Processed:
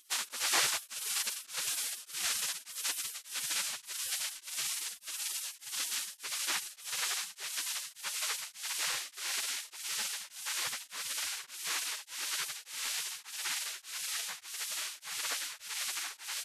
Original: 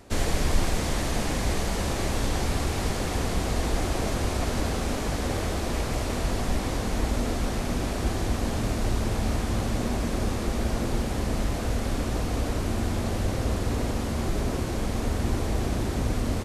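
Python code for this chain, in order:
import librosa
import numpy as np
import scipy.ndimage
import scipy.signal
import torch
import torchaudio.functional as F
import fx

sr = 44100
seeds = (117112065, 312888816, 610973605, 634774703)

y = fx.spec_gate(x, sr, threshold_db=-30, keep='weak')
y = y * np.abs(np.cos(np.pi * 1.7 * np.arange(len(y)) / sr))
y = y * librosa.db_to_amplitude(8.0)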